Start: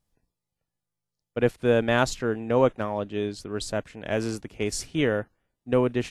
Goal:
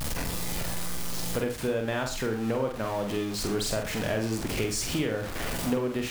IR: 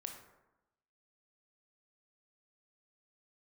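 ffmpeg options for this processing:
-filter_complex "[0:a]aeval=exprs='val(0)+0.5*0.0355*sgn(val(0))':channel_layout=same,acompressor=threshold=-32dB:ratio=6,asplit=2[link_01][link_02];[1:a]atrim=start_sample=2205,atrim=end_sample=3969,adelay=45[link_03];[link_02][link_03]afir=irnorm=-1:irlink=0,volume=-0.5dB[link_04];[link_01][link_04]amix=inputs=2:normalize=0,volume=4dB"

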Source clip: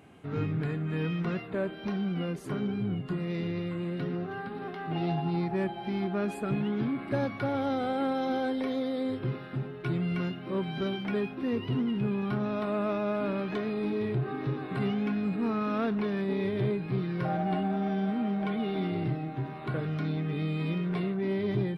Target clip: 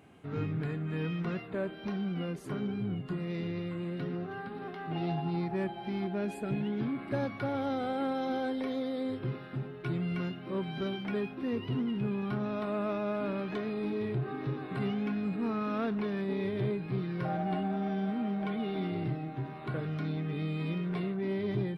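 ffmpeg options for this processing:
ffmpeg -i in.wav -filter_complex "[0:a]asettb=1/sr,asplit=3[link_01][link_02][link_03];[link_01]atrim=end=6.074[link_04];[link_02]atrim=start=6.07:end=6.81,asetpts=PTS-STARTPTS,afade=type=in:duration=0.004:curve=qsin,afade=type=out:start_time=0.736:duration=0.004:curve=qsin,equalizer=frequency=1200:width=5.6:gain=-12.5[link_05];[link_03]atrim=start=6.806[link_06];[link_04][link_05]acrossfade=duration=0.004:curve1=hsin:curve2=qsin[link_07];[link_07][link_06]acrossfade=duration=0.004:curve1=qsin:curve2=hsin,volume=-3dB" out.wav

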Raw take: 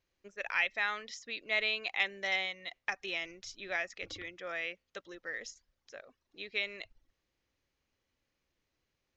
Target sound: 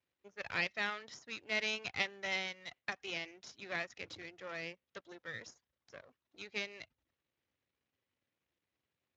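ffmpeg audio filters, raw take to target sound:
ffmpeg -i in.wav -filter_complex "[0:a]aeval=exprs='if(lt(val(0),0),0.251*val(0),val(0))':channel_layout=same,asettb=1/sr,asplit=3[link_01][link_02][link_03];[link_01]atrim=end=4.154[link_04];[link_02]atrim=start=4.15:end=6.74,asetpts=PTS-STARTPTS,afade=type=in:duration=0.004:curve=qsin,afade=type=out:start_time=2.586:duration=0.004:curve=qsin,adynamicequalizer=threshold=0.00282:dfrequency=2300:dqfactor=0.71:tfrequency=2300:tqfactor=0.71:attack=5:release=100:ratio=0.375:range=3:mode=cutabove:tftype=bell[link_05];[link_03]atrim=start=6.736[link_06];[link_04][link_05]acrossfade=duration=0.004:curve1=hsin:curve2=qsin[link_07];[link_07][link_06]acrossfade=duration=0.004:curve1=qsin:curve2=hsin,volume=-1dB" -ar 16000 -c:a libspeex -b:a 34k out.spx

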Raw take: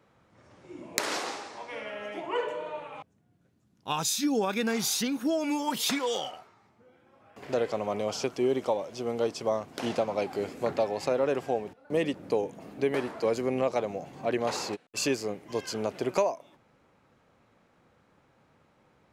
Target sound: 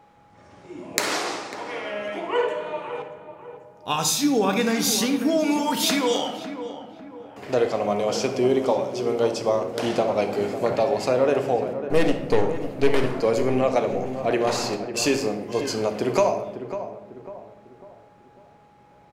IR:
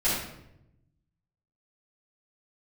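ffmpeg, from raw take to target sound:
-filter_complex "[0:a]asettb=1/sr,asplit=3[link_01][link_02][link_03];[link_01]atrim=end=11.824[link_04];[link_02]atrim=start=11.82:end=13.17,asetpts=PTS-STARTPTS,afade=type=in:duration=0.004:curve=qsin,afade=type=out:start_time=1.346:duration=0.004:curve=qsin,aeval=exprs='0.188*(cos(1*acos(clip(val(0)/0.188,-1,1)))-cos(1*PI/2))+0.0211*(cos(8*acos(clip(val(0)/0.188,-1,1)))-cos(8*PI/2))':channel_layout=same[link_05];[link_03]atrim=start=13.166[link_06];[link_04][link_05]acrossfade=duration=0.004:curve1=hsin:curve2=qsin[link_07];[link_07][link_06]acrossfade=duration=0.004:curve1=qsin:curve2=hsin,asplit=2[link_08][link_09];[link_09]adelay=548,lowpass=frequency=1300:poles=1,volume=-10dB,asplit=2[link_10][link_11];[link_11]adelay=548,lowpass=frequency=1300:poles=1,volume=0.44,asplit=2[link_12][link_13];[link_13]adelay=548,lowpass=frequency=1300:poles=1,volume=0.44,asplit=2[link_14][link_15];[link_15]adelay=548,lowpass=frequency=1300:poles=1,volume=0.44,asplit=2[link_16][link_17];[link_17]adelay=548,lowpass=frequency=1300:poles=1,volume=0.44[link_18];[link_08][link_10][link_12][link_14][link_16][link_18]amix=inputs=6:normalize=0,aeval=exprs='val(0)+0.00158*sin(2*PI*830*n/s)':channel_layout=same,asplit=2[link_19][link_20];[1:a]atrim=start_sample=2205[link_21];[link_20][link_21]afir=irnorm=-1:irlink=0,volume=-16.5dB[link_22];[link_19][link_22]amix=inputs=2:normalize=0,volume=4.5dB"

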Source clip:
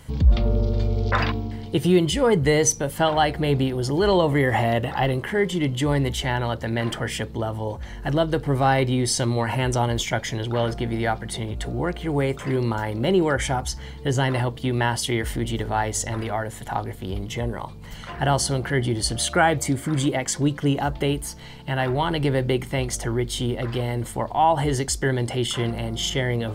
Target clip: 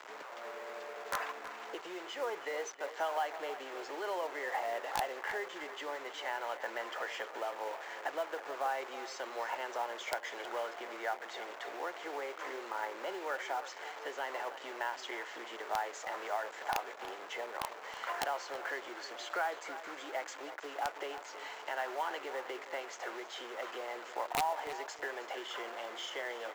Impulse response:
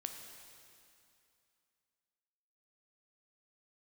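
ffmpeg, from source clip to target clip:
-filter_complex "[0:a]acompressor=threshold=-32dB:ratio=6,aresample=16000,acrusher=bits=6:mix=0:aa=0.000001,aresample=44100,highpass=frequency=350:width=0.5412,highpass=frequency=350:width=1.3066,acrossover=split=520 2200:gain=0.141 1 0.178[link_01][link_02][link_03];[link_01][link_02][link_03]amix=inputs=3:normalize=0,aeval=exprs='(mod(20*val(0)+1,2)-1)/20':channel_layout=same,asplit=2[link_04][link_05];[link_05]adelay=321,lowpass=frequency=4800:poles=1,volume=-12.5dB,asplit=2[link_06][link_07];[link_07]adelay=321,lowpass=frequency=4800:poles=1,volume=0.31,asplit=2[link_08][link_09];[link_09]adelay=321,lowpass=frequency=4800:poles=1,volume=0.31[link_10];[link_04][link_06][link_08][link_10]amix=inputs=4:normalize=0,acrusher=bits=6:mode=log:mix=0:aa=0.000001,volume=2.5dB"

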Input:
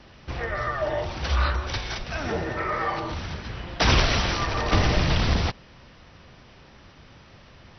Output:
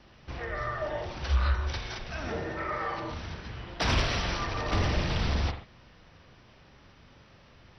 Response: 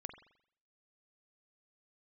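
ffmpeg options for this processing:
-filter_complex "[0:a]asplit=3[link_01][link_02][link_03];[link_01]afade=type=out:start_time=1.25:duration=0.02[link_04];[link_02]asubboost=boost=5.5:cutoff=88,afade=type=in:start_time=1.25:duration=0.02,afade=type=out:start_time=1.68:duration=0.02[link_05];[link_03]afade=type=in:start_time=1.68:duration=0.02[link_06];[link_04][link_05][link_06]amix=inputs=3:normalize=0,asoftclip=type=tanh:threshold=-10dB[link_07];[1:a]atrim=start_sample=2205,afade=type=out:start_time=0.2:duration=0.01,atrim=end_sample=9261[link_08];[link_07][link_08]afir=irnorm=-1:irlink=0,volume=-2dB"

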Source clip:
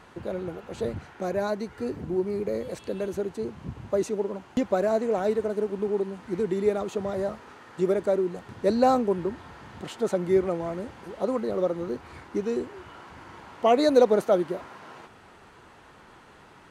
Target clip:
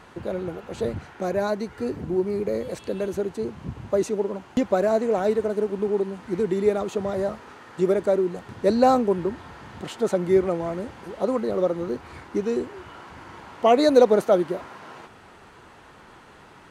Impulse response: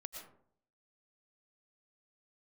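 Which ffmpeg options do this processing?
-af "volume=3dB"

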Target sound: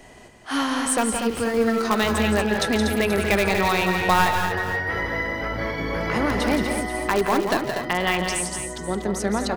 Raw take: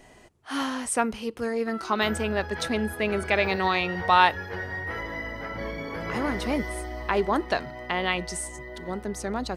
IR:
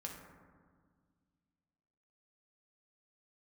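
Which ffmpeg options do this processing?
-filter_complex "[0:a]asettb=1/sr,asplit=3[link_01][link_02][link_03];[link_01]atrim=end=1.294[link_04];[link_02]atrim=start=1.29:end=1.82,asetpts=PTS-STARTPTS,afade=type=in:duration=0.004:curve=qsin,afade=type=out:start_time=0.526:duration=0.004:curve=qsin,aeval=exprs='val(0)+0.5*0.0158*sgn(val(0))':channel_layout=same[link_05];[link_03]atrim=start=1.816[link_06];[link_04][link_05]acrossfade=duration=0.004:curve1=hsin:curve2=qsin[link_07];[link_07][link_06]acrossfade=duration=0.004:curve1=qsin:curve2=hsin,bandreject=frequency=125.7:width_type=h:width=4,bandreject=frequency=251.4:width_type=h:width=4,bandreject=frequency=377.1:width_type=h:width=4,bandreject=frequency=502.8:width_type=h:width=4,bandreject=frequency=628.5:width_type=h:width=4,bandreject=frequency=754.2:width_type=h:width=4,bandreject=frequency=879.9:width_type=h:width=4,bandreject=frequency=1005.6:width_type=h:width=4,bandreject=frequency=1131.3:width_type=h:width=4,bandreject=frequency=1257:width_type=h:width=4,bandreject=frequency=1382.7:width_type=h:width=4,bandreject=frequency=1508.4:width_type=h:width=4,aeval=exprs='0.668*(cos(1*acos(clip(val(0)/0.668,-1,1)))-cos(1*PI/2))+0.237*(cos(2*acos(clip(val(0)/0.668,-1,1)))-cos(2*PI/2))+0.0211*(cos(3*acos(clip(val(0)/0.668,-1,1)))-cos(3*PI/2))+0.0299*(cos(7*acos(clip(val(0)/0.668,-1,1)))-cos(7*PI/2))+0.00944*(cos(8*acos(clip(val(0)/0.668,-1,1)))-cos(8*PI/2))':channel_layout=same,asplit=2[link_08][link_09];[link_09]aeval=exprs='(mod(9.44*val(0)+1,2)-1)/9.44':channel_layout=same,volume=-7.5dB[link_10];[link_08][link_10]amix=inputs=2:normalize=0,acrossover=split=170[link_11][link_12];[link_12]acompressor=threshold=-28dB:ratio=2[link_13];[link_11][link_13]amix=inputs=2:normalize=0,asplit=2[link_14][link_15];[link_15]aecho=0:1:152|171|213|241|481:0.126|0.447|0.106|0.422|0.2[link_16];[link_14][link_16]amix=inputs=2:normalize=0,volume=7.5dB"

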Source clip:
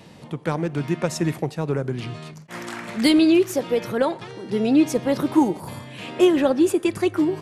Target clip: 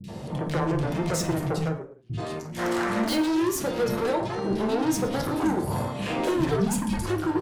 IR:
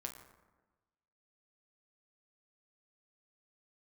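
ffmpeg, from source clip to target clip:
-filter_complex "[0:a]asplit=3[link_01][link_02][link_03];[link_01]afade=type=out:start_time=1.64:duration=0.02[link_04];[link_02]agate=range=-39dB:threshold=-18dB:ratio=16:detection=peak,afade=type=in:start_time=1.64:duration=0.02,afade=type=out:start_time=2.09:duration=0.02[link_05];[link_03]afade=type=in:start_time=2.09:duration=0.02[link_06];[link_04][link_05][link_06]amix=inputs=3:normalize=0,bandreject=frequency=60:width_type=h:width=6,bandreject=frequency=120:width_type=h:width=6,bandreject=frequency=180:width_type=h:width=6,bandreject=frequency=240:width_type=h:width=6,bandreject=frequency=300:width_type=h:width=6,acrossover=split=130|2800[link_07][link_08][link_09];[link_08]acompressor=threshold=-27dB:ratio=6[link_10];[link_07][link_10][link_09]amix=inputs=3:normalize=0,volume=27dB,asoftclip=hard,volume=-27dB,asplit=2[link_11][link_12];[link_12]adynamicsmooth=sensitivity=6.5:basefreq=690,volume=0dB[link_13];[link_11][link_13]amix=inputs=2:normalize=0,asoftclip=type=tanh:threshold=-26dB,asettb=1/sr,asplit=3[link_14][link_15][link_16];[link_14]atrim=end=6.394[link_17];[link_15]atrim=start=6.39:end=6.99,asetpts=PTS-STARTPTS,afade=type=in:duration=0.004:curve=qsin,afade=type=out:start_time=0.596:duration=0.004:curve=qsin,afreqshift=-130[link_18];[link_16]atrim=start=6.986[link_19];[link_17][link_18]acrossfade=duration=0.004:curve1=hsin:curve2=qsin[link_20];[link_20][link_19]acrossfade=duration=0.004:curve1=qsin:curve2=hsin,acrossover=split=250|2400[link_21][link_22][link_23];[link_23]adelay=40[link_24];[link_22]adelay=80[link_25];[link_21][link_25][link_24]amix=inputs=3:normalize=0[link_26];[1:a]atrim=start_sample=2205,afade=type=out:start_time=0.17:duration=0.01,atrim=end_sample=7938[link_27];[link_26][link_27]afir=irnorm=-1:irlink=0,volume=8.5dB"

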